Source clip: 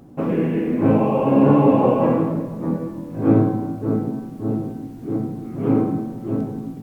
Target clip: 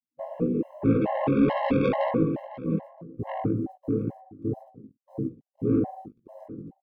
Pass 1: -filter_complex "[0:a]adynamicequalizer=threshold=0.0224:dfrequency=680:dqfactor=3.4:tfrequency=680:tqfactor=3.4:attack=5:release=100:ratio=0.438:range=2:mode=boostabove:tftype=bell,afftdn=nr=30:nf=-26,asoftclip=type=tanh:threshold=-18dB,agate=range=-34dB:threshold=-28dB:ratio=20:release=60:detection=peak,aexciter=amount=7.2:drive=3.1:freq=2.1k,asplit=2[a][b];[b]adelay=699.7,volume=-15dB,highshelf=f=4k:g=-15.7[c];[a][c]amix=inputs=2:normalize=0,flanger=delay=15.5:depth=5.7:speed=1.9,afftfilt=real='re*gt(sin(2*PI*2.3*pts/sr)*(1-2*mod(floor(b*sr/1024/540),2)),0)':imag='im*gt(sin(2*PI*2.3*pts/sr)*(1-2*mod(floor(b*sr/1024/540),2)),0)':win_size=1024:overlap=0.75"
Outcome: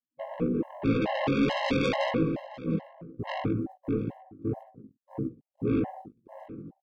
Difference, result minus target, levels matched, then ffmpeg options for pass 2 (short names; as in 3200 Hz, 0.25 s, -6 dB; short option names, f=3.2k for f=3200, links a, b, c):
soft clip: distortion +6 dB
-filter_complex "[0:a]adynamicequalizer=threshold=0.0224:dfrequency=680:dqfactor=3.4:tfrequency=680:tqfactor=3.4:attack=5:release=100:ratio=0.438:range=2:mode=boostabove:tftype=bell,afftdn=nr=30:nf=-26,asoftclip=type=tanh:threshold=-11.5dB,agate=range=-34dB:threshold=-28dB:ratio=20:release=60:detection=peak,aexciter=amount=7.2:drive=3.1:freq=2.1k,asplit=2[a][b];[b]adelay=699.7,volume=-15dB,highshelf=f=4k:g=-15.7[c];[a][c]amix=inputs=2:normalize=0,flanger=delay=15.5:depth=5.7:speed=1.9,afftfilt=real='re*gt(sin(2*PI*2.3*pts/sr)*(1-2*mod(floor(b*sr/1024/540),2)),0)':imag='im*gt(sin(2*PI*2.3*pts/sr)*(1-2*mod(floor(b*sr/1024/540),2)),0)':win_size=1024:overlap=0.75"